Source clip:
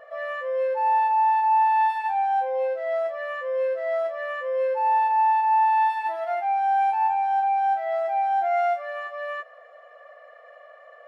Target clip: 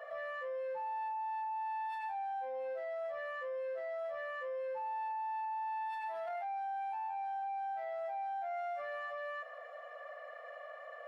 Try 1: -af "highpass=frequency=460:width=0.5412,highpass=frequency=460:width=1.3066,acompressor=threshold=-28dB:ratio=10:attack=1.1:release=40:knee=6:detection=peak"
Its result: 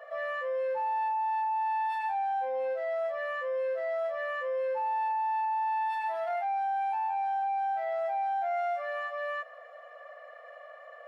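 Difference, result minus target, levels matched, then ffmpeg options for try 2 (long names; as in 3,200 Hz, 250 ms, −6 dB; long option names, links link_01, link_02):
downward compressor: peak gain reduction −8.5 dB
-af "highpass=frequency=460:width=0.5412,highpass=frequency=460:width=1.3066,acompressor=threshold=-37.5dB:ratio=10:attack=1.1:release=40:knee=6:detection=peak"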